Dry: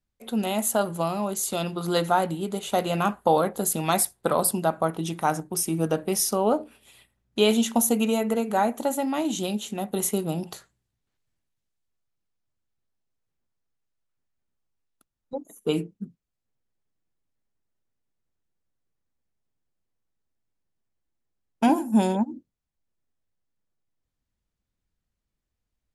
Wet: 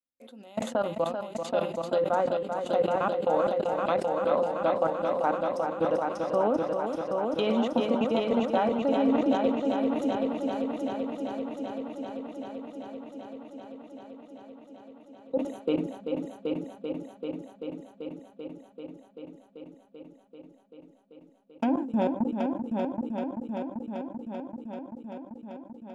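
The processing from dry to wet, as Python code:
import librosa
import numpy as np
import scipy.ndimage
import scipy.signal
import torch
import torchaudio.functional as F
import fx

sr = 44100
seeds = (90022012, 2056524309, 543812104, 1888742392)

p1 = fx.riaa(x, sr, side='recording')
p2 = fx.small_body(p1, sr, hz=(270.0, 520.0), ring_ms=100, db=17)
p3 = fx.level_steps(p2, sr, step_db=23)
p4 = fx.env_lowpass_down(p3, sr, base_hz=2400.0, full_db=-23.0)
p5 = fx.spacing_loss(p4, sr, db_at_10k=23)
p6 = p5 + fx.echo_heads(p5, sr, ms=388, heads='first and second', feedback_pct=74, wet_db=-7.0, dry=0)
y = fx.sustainer(p6, sr, db_per_s=90.0)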